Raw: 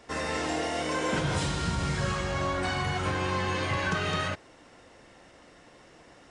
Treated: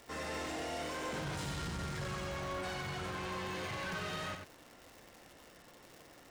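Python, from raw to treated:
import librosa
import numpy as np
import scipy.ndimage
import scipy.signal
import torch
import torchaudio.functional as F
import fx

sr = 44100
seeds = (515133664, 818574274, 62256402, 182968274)

y = 10.0 ** (-32.0 / 20.0) * np.tanh(x / 10.0 ** (-32.0 / 20.0))
y = fx.dmg_crackle(y, sr, seeds[0], per_s=230.0, level_db=-39.0)
y = y + 10.0 ** (-6.5 / 20.0) * np.pad(y, (int(92 * sr / 1000.0), 0))[:len(y)]
y = y * 10.0 ** (-5.5 / 20.0)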